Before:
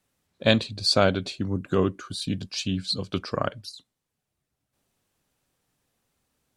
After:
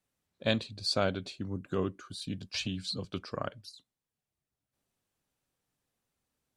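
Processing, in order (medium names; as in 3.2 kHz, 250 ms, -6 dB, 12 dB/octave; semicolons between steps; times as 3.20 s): 2.54–3.05 s: three bands compressed up and down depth 100%; trim -9 dB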